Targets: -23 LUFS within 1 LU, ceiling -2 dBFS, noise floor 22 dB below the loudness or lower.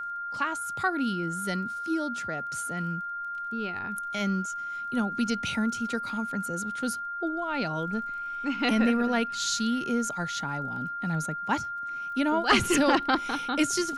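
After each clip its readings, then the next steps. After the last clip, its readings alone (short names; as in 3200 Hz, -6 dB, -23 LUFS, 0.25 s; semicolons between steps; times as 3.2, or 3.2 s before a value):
ticks 22/s; steady tone 1400 Hz; tone level -32 dBFS; loudness -28.5 LUFS; peak -9.5 dBFS; loudness target -23.0 LUFS
-> de-click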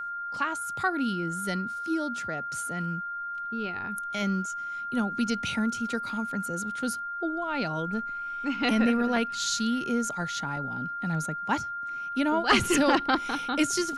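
ticks 0/s; steady tone 1400 Hz; tone level -32 dBFS
-> notch 1400 Hz, Q 30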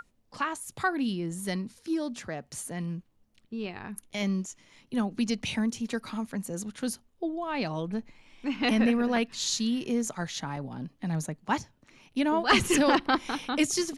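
steady tone none; loudness -30.0 LUFS; peak -10.0 dBFS; loudness target -23.0 LUFS
-> gain +7 dB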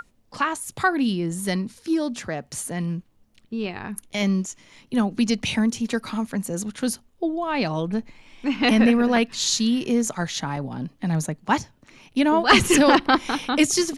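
loudness -23.0 LUFS; peak -3.0 dBFS; noise floor -60 dBFS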